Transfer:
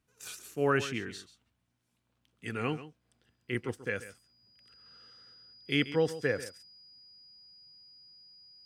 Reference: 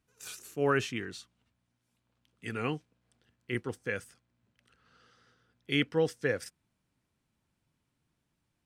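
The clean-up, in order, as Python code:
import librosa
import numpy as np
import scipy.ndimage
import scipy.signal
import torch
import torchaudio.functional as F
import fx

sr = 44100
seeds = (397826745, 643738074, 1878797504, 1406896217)

y = fx.notch(x, sr, hz=4900.0, q=30.0)
y = fx.fix_echo_inverse(y, sr, delay_ms=136, level_db=-14.5)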